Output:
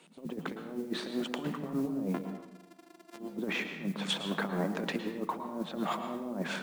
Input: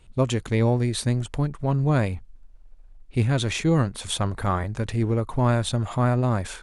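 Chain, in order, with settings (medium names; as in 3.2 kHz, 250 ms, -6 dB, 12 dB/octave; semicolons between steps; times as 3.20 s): 2.14–3.37 s: sorted samples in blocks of 128 samples; Chebyshev high-pass 160 Hz, order 8; low-pass that closes with the level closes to 460 Hz, closed at -20.5 dBFS; compressor with a negative ratio -33 dBFS, ratio -0.5; modulation noise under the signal 26 dB; 0.66–1.24 s: doubling 38 ms -8.5 dB; reverberation RT60 1.0 s, pre-delay 104 ms, DRR 7 dB; trim -2 dB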